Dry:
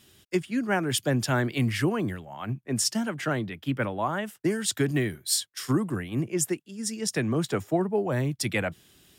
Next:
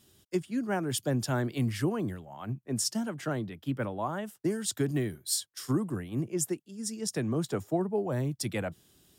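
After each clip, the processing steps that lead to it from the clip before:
parametric band 2,200 Hz −7.5 dB 1.4 octaves
level −3.5 dB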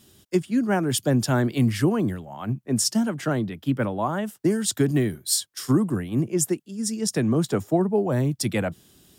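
parametric band 220 Hz +3 dB
level +7 dB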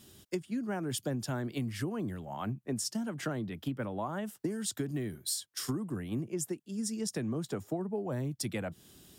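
downward compressor 6 to 1, threshold −31 dBFS, peak gain reduction 15 dB
level −1.5 dB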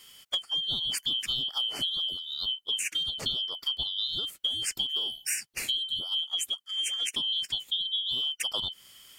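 band-splitting scrambler in four parts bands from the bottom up 2413
level +4 dB

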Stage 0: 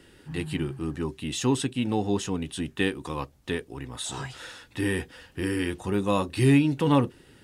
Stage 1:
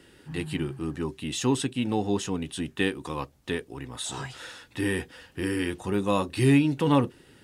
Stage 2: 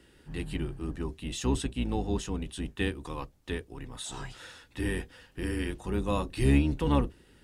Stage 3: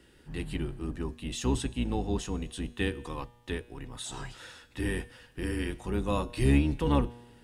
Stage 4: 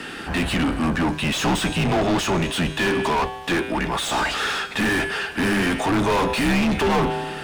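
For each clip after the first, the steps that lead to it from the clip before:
low-shelf EQ 66 Hz −6.5 dB
sub-octave generator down 2 octaves, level +1 dB; level −5.5 dB
tuned comb filter 120 Hz, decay 1.2 s, harmonics all, mix 50%; level +5.5 dB
frequency shifter −86 Hz; mid-hump overdrive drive 40 dB, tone 2,200 Hz, clips at −12 dBFS

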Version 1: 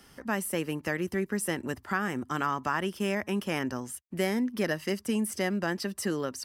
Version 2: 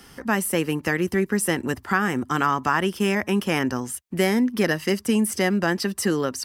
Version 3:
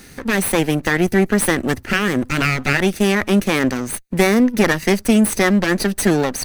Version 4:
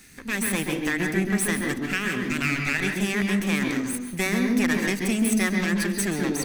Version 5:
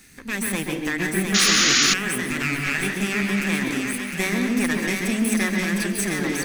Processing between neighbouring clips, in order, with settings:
notch filter 600 Hz, Q 12; level +8 dB
lower of the sound and its delayed copy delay 0.47 ms; level +7.5 dB
convolution reverb RT60 0.65 s, pre-delay 127 ms, DRR 3.5 dB; level −7.5 dB
feedback echo with a high-pass in the loop 706 ms, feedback 51%, high-pass 750 Hz, level −3 dB; sound drawn into the spectrogram noise, 0:01.34–0:01.94, 1,100–7,100 Hz −18 dBFS

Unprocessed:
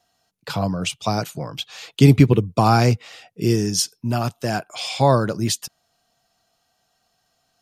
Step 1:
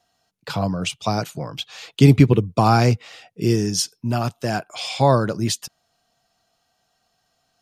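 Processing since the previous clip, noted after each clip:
high-shelf EQ 10,000 Hz −5.5 dB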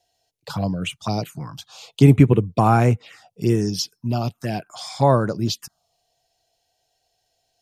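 phaser swept by the level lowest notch 210 Hz, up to 4,800 Hz, full sweep at −14 dBFS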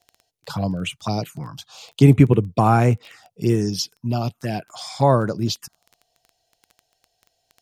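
surface crackle 13 per second −33 dBFS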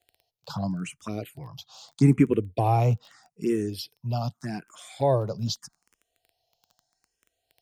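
frequency shifter mixed with the dry sound +0.81 Hz
level −4 dB

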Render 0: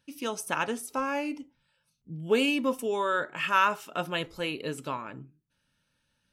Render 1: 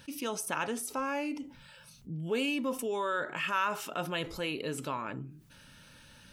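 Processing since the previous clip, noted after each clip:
envelope flattener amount 50%
level −8.5 dB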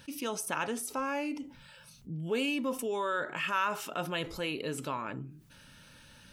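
no processing that can be heard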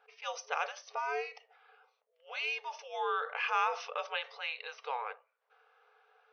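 low-pass that shuts in the quiet parts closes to 930 Hz, open at −27.5 dBFS
frequency shifter −130 Hz
brick-wall band-pass 420–6,300 Hz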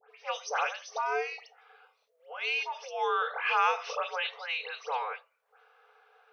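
all-pass dispersion highs, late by 106 ms, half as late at 2,300 Hz
level +4.5 dB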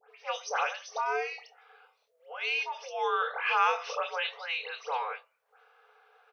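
double-tracking delay 26 ms −12 dB

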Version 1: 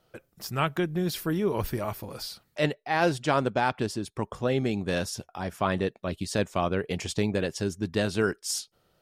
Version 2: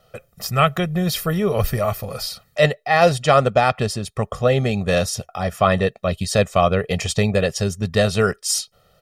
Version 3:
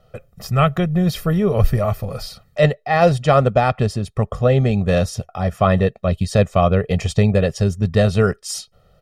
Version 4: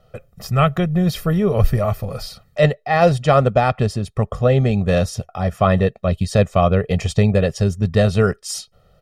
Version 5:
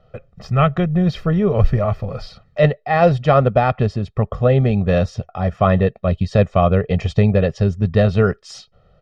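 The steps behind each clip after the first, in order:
comb filter 1.6 ms, depth 79%; level +7.5 dB
spectral tilt −2 dB per octave; level −1 dB
no processing that can be heard
high-frequency loss of the air 180 metres; level +1 dB

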